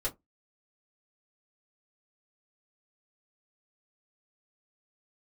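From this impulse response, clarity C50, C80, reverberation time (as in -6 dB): 20.5 dB, 32.0 dB, 0.15 s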